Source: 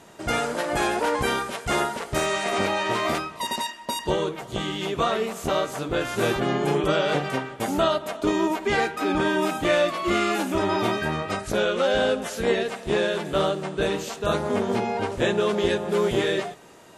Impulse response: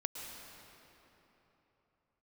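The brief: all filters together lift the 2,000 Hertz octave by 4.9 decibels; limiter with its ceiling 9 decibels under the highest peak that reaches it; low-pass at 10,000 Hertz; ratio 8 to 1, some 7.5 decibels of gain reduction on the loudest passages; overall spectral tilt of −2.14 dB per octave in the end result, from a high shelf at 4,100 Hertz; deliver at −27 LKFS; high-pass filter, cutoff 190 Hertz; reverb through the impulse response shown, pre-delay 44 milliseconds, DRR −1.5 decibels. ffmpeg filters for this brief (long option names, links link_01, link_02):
-filter_complex "[0:a]highpass=190,lowpass=10000,equalizer=frequency=2000:width_type=o:gain=7.5,highshelf=frequency=4100:gain=-6,acompressor=threshold=-24dB:ratio=8,alimiter=limit=-22.5dB:level=0:latency=1,asplit=2[link_01][link_02];[1:a]atrim=start_sample=2205,adelay=44[link_03];[link_02][link_03]afir=irnorm=-1:irlink=0,volume=1dB[link_04];[link_01][link_04]amix=inputs=2:normalize=0,volume=1dB"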